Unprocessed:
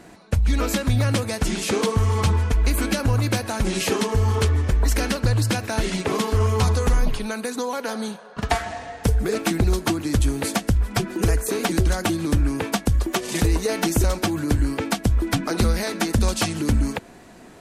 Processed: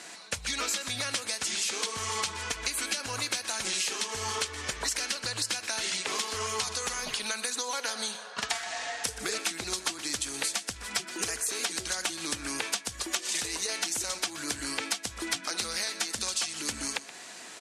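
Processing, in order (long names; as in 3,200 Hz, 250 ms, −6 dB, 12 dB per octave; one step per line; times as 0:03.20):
meter weighting curve ITU-R 468
downward compressor, threshold −29 dBFS, peak gain reduction 16 dB
single-tap delay 124 ms −15 dB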